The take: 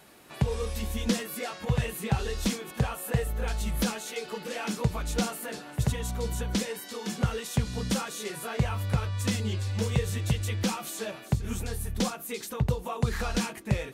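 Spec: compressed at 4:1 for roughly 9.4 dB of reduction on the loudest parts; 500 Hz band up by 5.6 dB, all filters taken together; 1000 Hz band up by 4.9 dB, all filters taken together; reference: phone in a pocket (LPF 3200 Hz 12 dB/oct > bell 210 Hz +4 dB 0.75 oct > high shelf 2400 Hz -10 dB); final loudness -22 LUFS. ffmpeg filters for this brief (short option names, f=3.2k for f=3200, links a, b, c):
-af "equalizer=f=500:t=o:g=5,equalizer=f=1k:t=o:g=6.5,acompressor=threshold=-31dB:ratio=4,lowpass=3.2k,equalizer=f=210:t=o:w=0.75:g=4,highshelf=f=2.4k:g=-10,volume=13.5dB"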